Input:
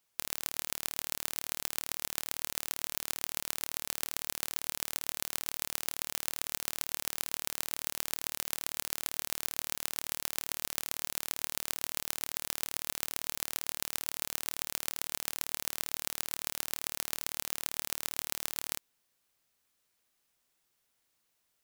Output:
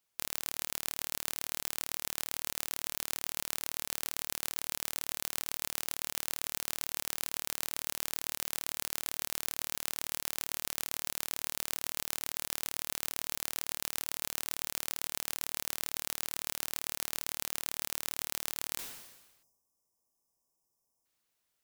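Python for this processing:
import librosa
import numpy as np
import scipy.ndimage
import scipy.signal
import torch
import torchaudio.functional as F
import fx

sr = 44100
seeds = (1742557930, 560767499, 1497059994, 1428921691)

y = fx.spec_erase(x, sr, start_s=19.43, length_s=1.63, low_hz=1200.0, high_hz=4900.0)
y = fx.sustainer(y, sr, db_per_s=50.0)
y = y * librosa.db_to_amplitude(-3.5)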